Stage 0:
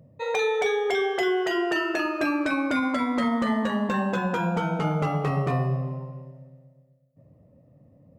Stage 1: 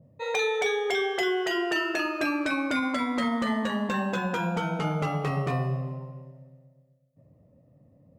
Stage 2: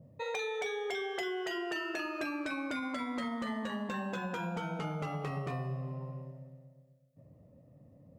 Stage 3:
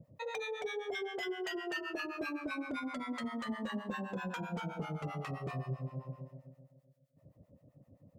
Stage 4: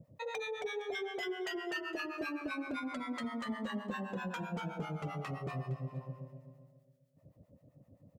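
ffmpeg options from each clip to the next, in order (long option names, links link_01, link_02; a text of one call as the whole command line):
ffmpeg -i in.wav -af "adynamicequalizer=threshold=0.01:dfrequency=1800:dqfactor=0.7:tfrequency=1800:tqfactor=0.7:attack=5:release=100:ratio=0.375:range=2.5:mode=boostabove:tftype=highshelf,volume=-3dB" out.wav
ffmpeg -i in.wav -af "acompressor=threshold=-37dB:ratio=3" out.wav
ffmpeg -i in.wav -filter_complex "[0:a]acrossover=split=740[link_01][link_02];[link_01]aeval=exprs='val(0)*(1-1/2+1/2*cos(2*PI*7.7*n/s))':channel_layout=same[link_03];[link_02]aeval=exprs='val(0)*(1-1/2-1/2*cos(2*PI*7.7*n/s))':channel_layout=same[link_04];[link_03][link_04]amix=inputs=2:normalize=0,volume=2dB" out.wav
ffmpeg -i in.wav -af "aecho=1:1:462:0.1" out.wav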